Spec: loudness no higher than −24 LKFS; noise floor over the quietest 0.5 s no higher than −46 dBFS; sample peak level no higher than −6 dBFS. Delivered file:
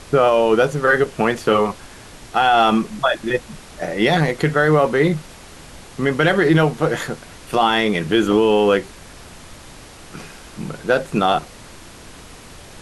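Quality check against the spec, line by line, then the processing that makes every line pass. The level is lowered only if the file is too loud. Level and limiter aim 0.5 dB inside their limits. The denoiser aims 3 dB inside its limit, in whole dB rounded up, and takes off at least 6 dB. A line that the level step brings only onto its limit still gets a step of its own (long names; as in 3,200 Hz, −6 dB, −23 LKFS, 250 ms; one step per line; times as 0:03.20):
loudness −17.5 LKFS: out of spec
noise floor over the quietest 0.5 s −40 dBFS: out of spec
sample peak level −4.5 dBFS: out of spec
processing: level −7 dB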